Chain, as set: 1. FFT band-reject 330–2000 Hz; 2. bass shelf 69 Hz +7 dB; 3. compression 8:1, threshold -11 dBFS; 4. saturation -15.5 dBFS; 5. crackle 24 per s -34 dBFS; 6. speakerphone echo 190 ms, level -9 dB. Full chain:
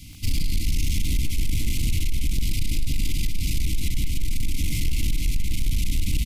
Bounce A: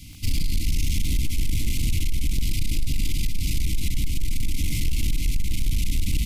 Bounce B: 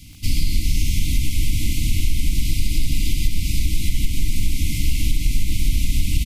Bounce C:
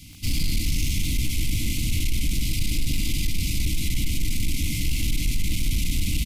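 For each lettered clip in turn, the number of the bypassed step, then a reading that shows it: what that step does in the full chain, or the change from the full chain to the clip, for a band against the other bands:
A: 6, echo-to-direct -10.5 dB to none; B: 4, distortion -13 dB; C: 2, 125 Hz band -3.0 dB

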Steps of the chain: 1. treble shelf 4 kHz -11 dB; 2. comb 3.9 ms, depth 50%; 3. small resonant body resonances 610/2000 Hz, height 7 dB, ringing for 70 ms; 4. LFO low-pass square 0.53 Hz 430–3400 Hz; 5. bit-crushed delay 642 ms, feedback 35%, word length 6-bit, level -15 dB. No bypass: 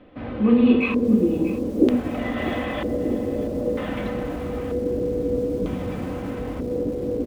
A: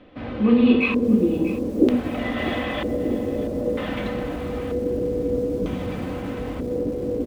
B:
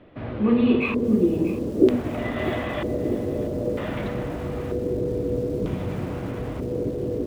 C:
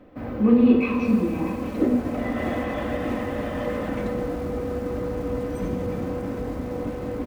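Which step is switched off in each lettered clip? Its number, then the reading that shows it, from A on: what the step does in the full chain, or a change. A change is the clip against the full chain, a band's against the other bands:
1, 4 kHz band +4.0 dB; 2, crest factor change +2.0 dB; 4, 1 kHz band +3.5 dB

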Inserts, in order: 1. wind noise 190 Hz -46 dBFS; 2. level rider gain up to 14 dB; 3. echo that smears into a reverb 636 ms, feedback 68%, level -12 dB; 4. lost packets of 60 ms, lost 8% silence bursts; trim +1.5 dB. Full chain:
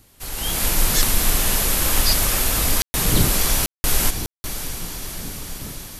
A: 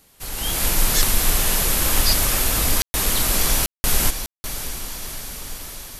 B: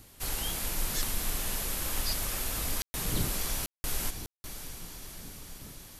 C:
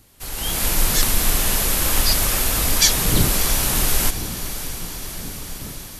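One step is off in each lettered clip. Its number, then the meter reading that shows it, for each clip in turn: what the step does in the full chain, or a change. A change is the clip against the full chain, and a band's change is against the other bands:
1, 250 Hz band -2.5 dB; 2, loudness change -13.0 LU; 4, momentary loudness spread change +2 LU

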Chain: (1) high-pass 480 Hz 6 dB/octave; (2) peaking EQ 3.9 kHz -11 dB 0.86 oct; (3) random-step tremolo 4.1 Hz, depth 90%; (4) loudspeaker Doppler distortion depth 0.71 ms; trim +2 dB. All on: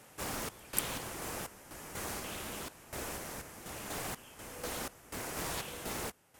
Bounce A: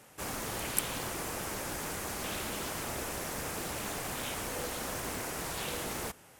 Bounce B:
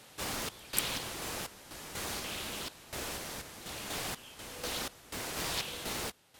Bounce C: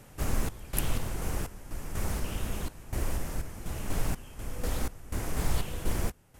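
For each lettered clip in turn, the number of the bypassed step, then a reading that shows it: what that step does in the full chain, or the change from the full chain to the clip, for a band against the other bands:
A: 3, momentary loudness spread change -5 LU; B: 2, 4 kHz band +6.5 dB; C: 1, 125 Hz band +13.5 dB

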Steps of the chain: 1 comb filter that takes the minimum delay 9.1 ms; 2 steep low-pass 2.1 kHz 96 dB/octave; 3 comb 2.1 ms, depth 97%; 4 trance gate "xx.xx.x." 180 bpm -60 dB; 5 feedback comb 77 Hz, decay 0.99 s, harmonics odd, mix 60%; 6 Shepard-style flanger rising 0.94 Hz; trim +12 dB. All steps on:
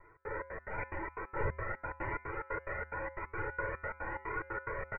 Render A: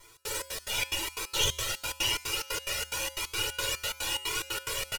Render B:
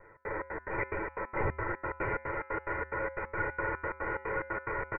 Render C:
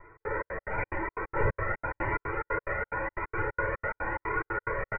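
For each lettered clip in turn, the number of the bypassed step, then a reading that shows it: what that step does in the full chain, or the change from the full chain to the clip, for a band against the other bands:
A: 2, 2 kHz band +4.5 dB; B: 6, 250 Hz band +2.0 dB; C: 5, loudness change +7.0 LU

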